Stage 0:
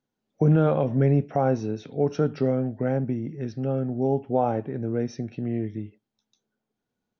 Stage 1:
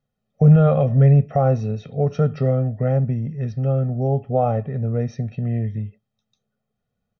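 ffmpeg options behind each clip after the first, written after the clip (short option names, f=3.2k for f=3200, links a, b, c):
-af "bass=f=250:g=7,treble=f=4k:g=-6,aecho=1:1:1.6:0.82"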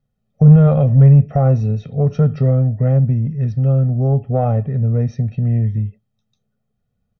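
-filter_complex "[0:a]lowshelf=f=210:g=11,asplit=2[a][b];[b]asoftclip=type=tanh:threshold=-8dB,volume=-4dB[c];[a][c]amix=inputs=2:normalize=0,volume=-5dB"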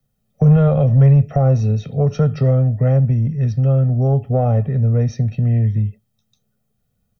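-filter_complex "[0:a]acrossover=split=130|350|590[a][b][c][d];[b]acompressor=threshold=-23dB:ratio=6[e];[d]alimiter=limit=-23dB:level=0:latency=1:release=132[f];[a][e][c][f]amix=inputs=4:normalize=0,crystalizer=i=2:c=0,volume=2dB"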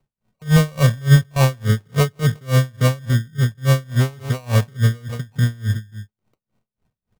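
-af "aecho=1:1:161:0.188,acrusher=samples=26:mix=1:aa=0.000001,aeval=exprs='val(0)*pow(10,-29*(0.5-0.5*cos(2*PI*3.5*n/s))/20)':c=same,volume=2.5dB"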